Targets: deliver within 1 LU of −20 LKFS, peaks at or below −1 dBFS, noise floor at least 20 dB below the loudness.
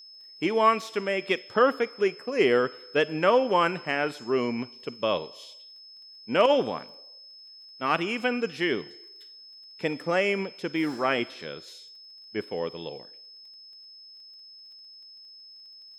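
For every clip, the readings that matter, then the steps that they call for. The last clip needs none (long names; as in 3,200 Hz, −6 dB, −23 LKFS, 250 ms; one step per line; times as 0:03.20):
crackle rate 20 per second; interfering tone 5,200 Hz; level of the tone −46 dBFS; integrated loudness −26.5 LKFS; sample peak −8.5 dBFS; target loudness −20.0 LKFS
→ click removal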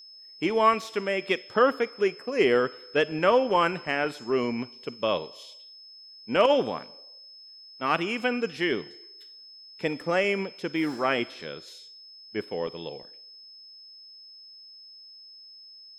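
crackle rate 0 per second; interfering tone 5,200 Hz; level of the tone −46 dBFS
→ notch filter 5,200 Hz, Q 30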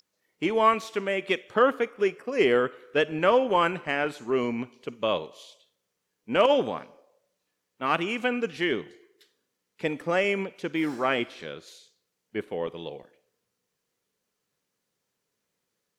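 interfering tone none found; integrated loudness −26.5 LKFS; sample peak −8.5 dBFS; target loudness −20.0 LKFS
→ level +6.5 dB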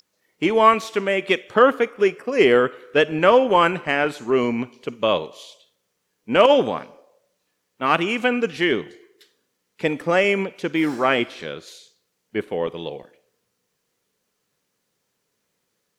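integrated loudness −20.0 LKFS; sample peak −2.0 dBFS; background noise floor −74 dBFS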